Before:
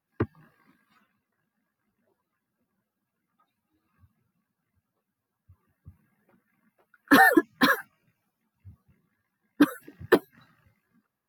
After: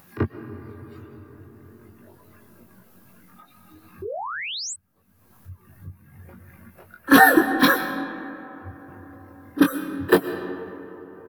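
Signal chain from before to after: treble shelf 9 kHz +7.5 dB; reverse echo 33 ms -16.5 dB; algorithmic reverb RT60 2.9 s, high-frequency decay 0.45×, pre-delay 85 ms, DRR 9.5 dB; painted sound rise, 4.02–4.74 s, 360–8500 Hz -34 dBFS; upward compressor, threshold -38 dBFS; bass shelf 210 Hz +3.5 dB; doubling 22 ms -5 dB; trim +2 dB

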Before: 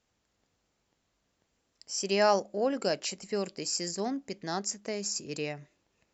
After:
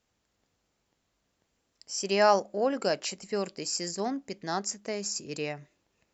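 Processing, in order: dynamic bell 1.1 kHz, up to +4 dB, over -42 dBFS, Q 0.8

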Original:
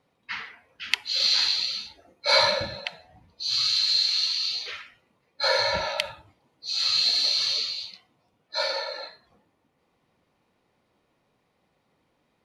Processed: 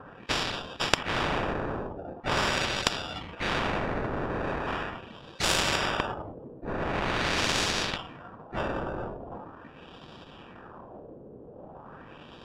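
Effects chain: sample-and-hold 21×; LFO low-pass sine 0.42 Hz 430–3900 Hz; spectrum-flattening compressor 4:1

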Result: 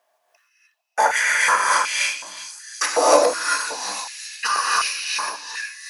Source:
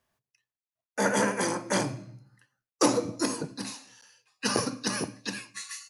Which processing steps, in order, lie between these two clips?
fade out at the end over 1.80 s; repeats whose band climbs or falls 365 ms, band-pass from 3.6 kHz, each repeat 0.7 oct, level -9.5 dB; gated-style reverb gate 330 ms rising, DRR -5 dB; in parallel at -2.5 dB: compression, threshold -28 dBFS, peak gain reduction 14 dB; on the sum: step-sequenced high-pass 2.7 Hz 660–2500 Hz; trim +1 dB

